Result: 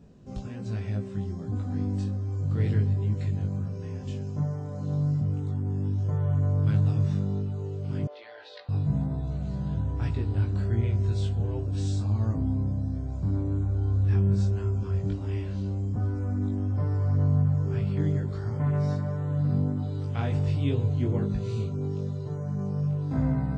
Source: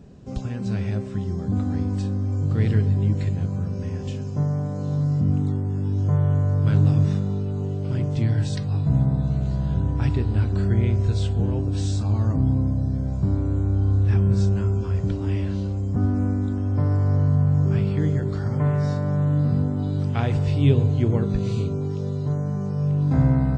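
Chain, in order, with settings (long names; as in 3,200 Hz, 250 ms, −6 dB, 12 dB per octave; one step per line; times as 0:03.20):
chorus effect 1.3 Hz, delay 18 ms, depth 2.6 ms
0:08.07–0:08.69: elliptic band-pass filter 520–4,100 Hz, stop band 50 dB
level −3.5 dB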